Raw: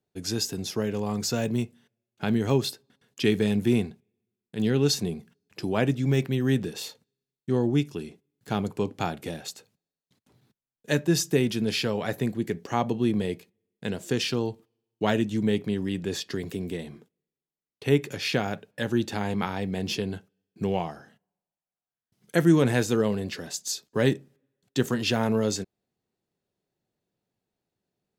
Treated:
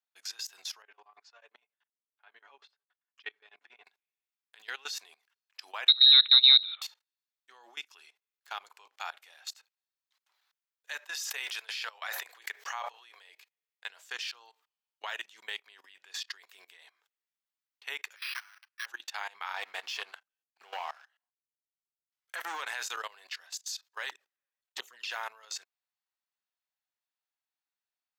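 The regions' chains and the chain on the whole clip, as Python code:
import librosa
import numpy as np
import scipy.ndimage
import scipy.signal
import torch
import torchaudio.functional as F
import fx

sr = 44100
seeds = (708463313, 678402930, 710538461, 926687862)

y = fx.chain(x, sr, fx.spacing_loss(db_at_10k=33),
    fx.comb(ms=6.9, depth=0.58),
    fx.tremolo_db(hz=11.0, depth_db=22), at=(0.82, 3.86))
y = fx.chain(y, sr, fx.freq_invert(carrier_hz=4000),
    fx.high_shelf(hz=2800.0, db=10.0), at=(5.88, 6.82))
y = fx.chain(y, sr, fx.highpass(hz=420.0, slope=24),
    fx.sustainer(db_per_s=29.0), at=(10.99, 13.29))
y = fx.chain(y, sr, fx.lower_of_two(delay_ms=8.4),
    fx.cheby2_highpass(hz=280.0, order=4, stop_db=70),
    fx.resample_bad(factor=6, down='filtered', up='hold'), at=(18.16, 18.86))
y = fx.chain(y, sr, fx.high_shelf(hz=2100.0, db=-3.5),
    fx.leveller(passes=2), at=(19.54, 22.61))
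y = fx.chain(y, sr, fx.low_shelf(hz=350.0, db=9.5),
    fx.env_flanger(rest_ms=7.6, full_db=-14.5), at=(24.09, 25.1))
y = scipy.signal.sosfilt(scipy.signal.butter(4, 980.0, 'highpass', fs=sr, output='sos'), y)
y = fx.peak_eq(y, sr, hz=10000.0, db=-8.5, octaves=0.93)
y = fx.level_steps(y, sr, step_db=20)
y = y * librosa.db_to_amplitude(3.0)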